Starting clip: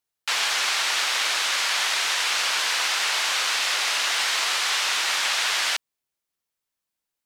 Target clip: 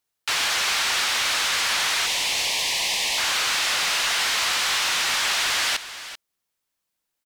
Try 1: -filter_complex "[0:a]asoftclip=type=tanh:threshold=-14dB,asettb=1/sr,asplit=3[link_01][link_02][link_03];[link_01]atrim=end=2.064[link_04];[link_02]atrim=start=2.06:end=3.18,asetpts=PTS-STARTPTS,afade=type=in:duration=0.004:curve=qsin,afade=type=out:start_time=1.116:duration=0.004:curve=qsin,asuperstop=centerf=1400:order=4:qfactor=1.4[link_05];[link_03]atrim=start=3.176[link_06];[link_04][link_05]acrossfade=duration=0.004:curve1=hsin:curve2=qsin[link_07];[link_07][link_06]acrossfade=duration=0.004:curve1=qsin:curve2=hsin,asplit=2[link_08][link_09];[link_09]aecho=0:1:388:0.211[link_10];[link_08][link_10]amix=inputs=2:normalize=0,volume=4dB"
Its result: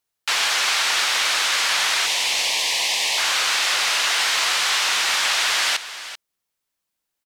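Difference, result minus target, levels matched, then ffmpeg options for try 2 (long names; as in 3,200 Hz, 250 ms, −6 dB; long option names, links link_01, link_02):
soft clipping: distortion −11 dB
-filter_complex "[0:a]asoftclip=type=tanh:threshold=-22.5dB,asettb=1/sr,asplit=3[link_01][link_02][link_03];[link_01]atrim=end=2.064[link_04];[link_02]atrim=start=2.06:end=3.18,asetpts=PTS-STARTPTS,afade=type=in:duration=0.004:curve=qsin,afade=type=out:start_time=1.116:duration=0.004:curve=qsin,asuperstop=centerf=1400:order=4:qfactor=1.4[link_05];[link_03]atrim=start=3.176[link_06];[link_04][link_05]acrossfade=duration=0.004:curve1=hsin:curve2=qsin[link_07];[link_07][link_06]acrossfade=duration=0.004:curve1=qsin:curve2=hsin,asplit=2[link_08][link_09];[link_09]aecho=0:1:388:0.211[link_10];[link_08][link_10]amix=inputs=2:normalize=0,volume=4dB"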